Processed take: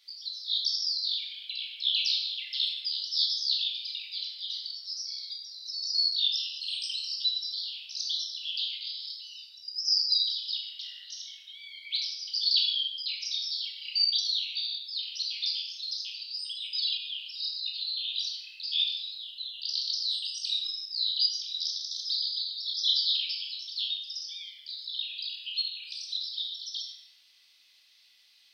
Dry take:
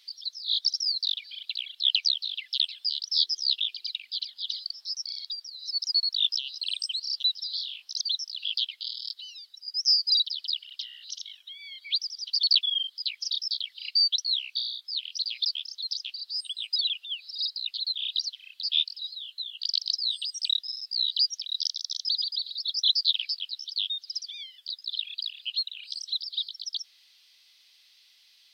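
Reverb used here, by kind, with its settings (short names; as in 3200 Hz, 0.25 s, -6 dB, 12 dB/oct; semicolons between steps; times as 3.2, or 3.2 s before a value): shoebox room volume 560 m³, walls mixed, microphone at 2.4 m; gain -7 dB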